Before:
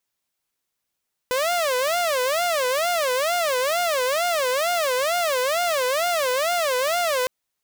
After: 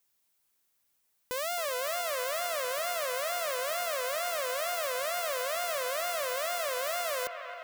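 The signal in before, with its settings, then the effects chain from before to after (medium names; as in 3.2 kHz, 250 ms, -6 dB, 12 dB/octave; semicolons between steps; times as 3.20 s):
siren wail 499–709 Hz 2.2 per s saw -17.5 dBFS 5.96 s
treble shelf 8.6 kHz +8.5 dB; peak limiter -21 dBFS; on a send: feedback echo behind a band-pass 268 ms, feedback 75%, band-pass 1.3 kHz, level -7.5 dB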